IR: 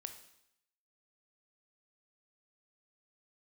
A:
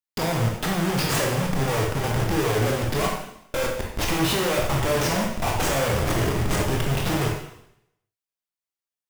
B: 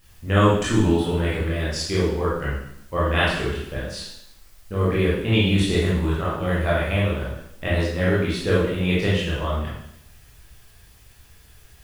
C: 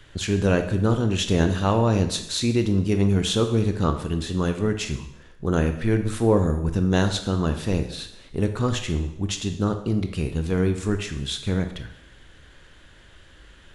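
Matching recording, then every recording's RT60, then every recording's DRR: C; 0.75, 0.75, 0.75 s; -1.0, -8.5, 7.0 dB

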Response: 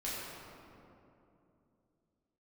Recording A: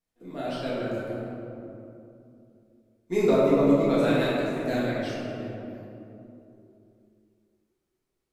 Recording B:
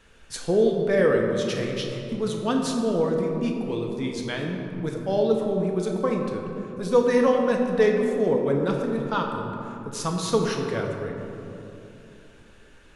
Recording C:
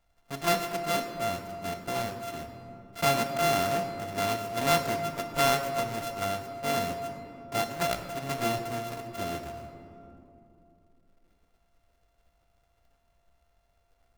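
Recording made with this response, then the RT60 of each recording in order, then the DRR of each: A; 2.8, 2.9, 2.9 s; -9.0, 1.0, 5.5 dB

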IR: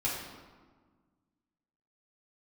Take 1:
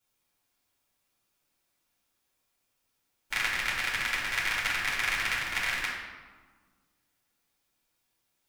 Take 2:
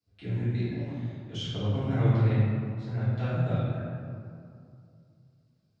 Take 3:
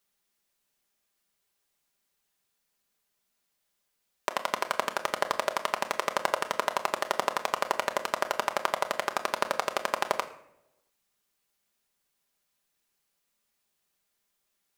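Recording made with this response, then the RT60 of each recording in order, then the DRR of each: 1; 1.5, 2.4, 0.80 s; -8.0, -14.5, 5.5 dB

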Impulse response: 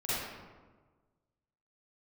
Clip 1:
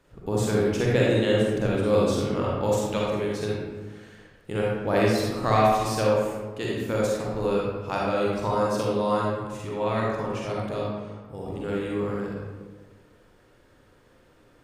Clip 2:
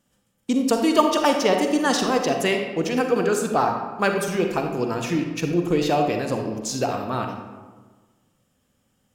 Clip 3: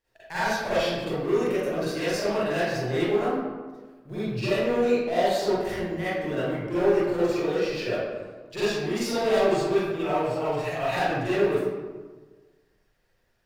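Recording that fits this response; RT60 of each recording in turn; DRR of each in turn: 3; 1.4, 1.4, 1.4 s; -4.5, 3.5, -13.0 dB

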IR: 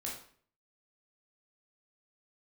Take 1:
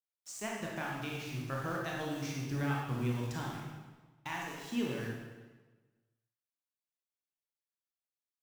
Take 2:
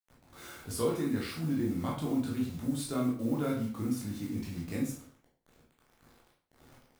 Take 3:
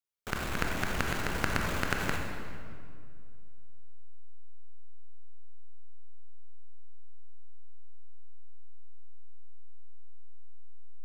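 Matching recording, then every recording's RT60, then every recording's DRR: 2; 1.3, 0.50, 2.2 s; -3.0, -4.0, 0.5 dB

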